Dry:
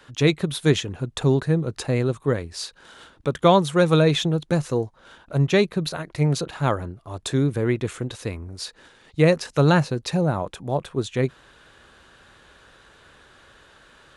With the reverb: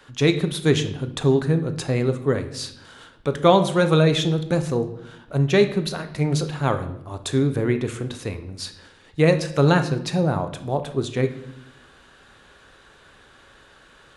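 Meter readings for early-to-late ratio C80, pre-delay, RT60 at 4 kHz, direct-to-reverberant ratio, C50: 15.0 dB, 3 ms, 0.60 s, 8.0 dB, 12.0 dB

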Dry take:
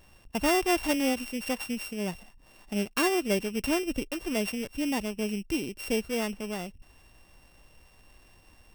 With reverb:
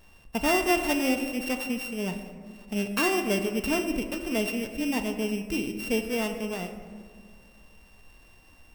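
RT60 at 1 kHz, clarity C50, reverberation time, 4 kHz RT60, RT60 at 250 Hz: 1.6 s, 8.0 dB, 1.9 s, 0.95 s, 2.4 s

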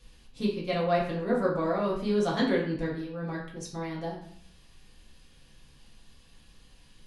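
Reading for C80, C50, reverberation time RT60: 8.5 dB, 5.0 dB, 0.60 s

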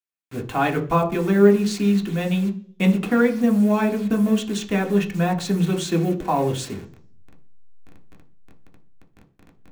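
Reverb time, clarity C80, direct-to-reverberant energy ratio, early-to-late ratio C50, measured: 0.45 s, 19.5 dB, 2.0 dB, 14.5 dB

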